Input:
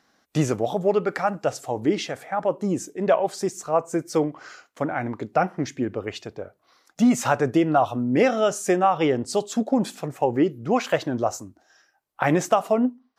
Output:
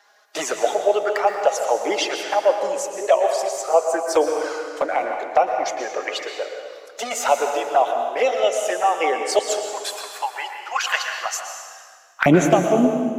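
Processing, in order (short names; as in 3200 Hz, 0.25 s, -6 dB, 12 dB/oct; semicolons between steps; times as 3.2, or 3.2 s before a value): bin magnitudes rounded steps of 15 dB; de-esser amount 55%; HPF 500 Hz 24 dB/oct, from 9.39 s 1100 Hz, from 12.26 s 160 Hz; vocal rider within 4 dB 0.5 s; envelope flanger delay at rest 5 ms, full sweep at -21.5 dBFS; reverb RT60 1.8 s, pre-delay 0.109 s, DRR 4 dB; gain +8 dB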